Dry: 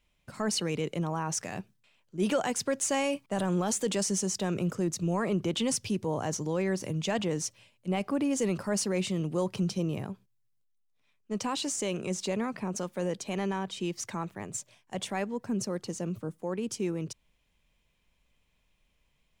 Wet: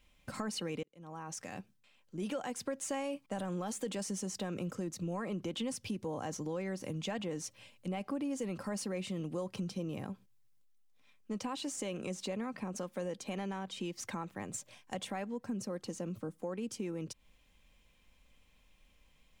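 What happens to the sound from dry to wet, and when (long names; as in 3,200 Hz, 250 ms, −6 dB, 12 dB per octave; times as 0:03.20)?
0:00.83–0:02.97: fade in
whole clip: comb filter 3.8 ms, depth 32%; dynamic equaliser 6,300 Hz, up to −5 dB, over −45 dBFS, Q 0.88; downward compressor 3 to 1, threshold −44 dBFS; level +4.5 dB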